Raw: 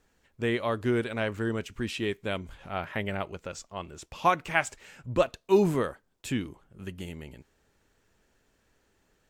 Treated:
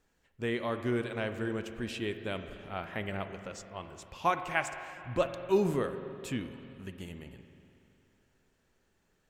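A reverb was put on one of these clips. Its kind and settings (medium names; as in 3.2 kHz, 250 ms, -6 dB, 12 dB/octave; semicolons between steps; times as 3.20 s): spring tank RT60 2.9 s, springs 41/47 ms, chirp 50 ms, DRR 8.5 dB; trim -5 dB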